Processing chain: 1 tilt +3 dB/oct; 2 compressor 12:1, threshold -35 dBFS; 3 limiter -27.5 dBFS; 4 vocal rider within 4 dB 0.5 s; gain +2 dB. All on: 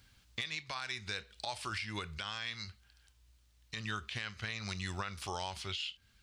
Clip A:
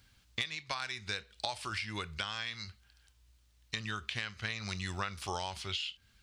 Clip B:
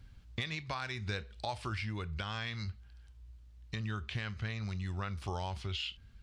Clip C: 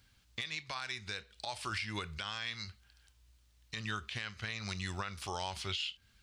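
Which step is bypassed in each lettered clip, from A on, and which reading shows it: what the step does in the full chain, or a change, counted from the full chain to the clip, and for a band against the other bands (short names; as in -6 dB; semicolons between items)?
3, crest factor change +7.0 dB; 1, 8 kHz band -9.0 dB; 4, crest factor change -2.0 dB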